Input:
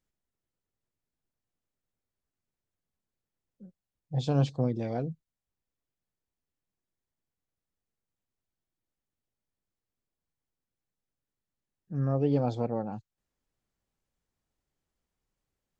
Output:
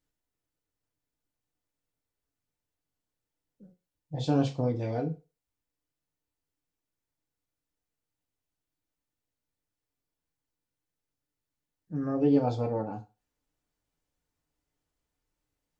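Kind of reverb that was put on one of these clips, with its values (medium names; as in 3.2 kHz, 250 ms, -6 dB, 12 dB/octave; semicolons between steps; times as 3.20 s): FDN reverb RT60 0.3 s, low-frequency decay 0.8×, high-frequency decay 0.95×, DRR 1.5 dB; trim -1 dB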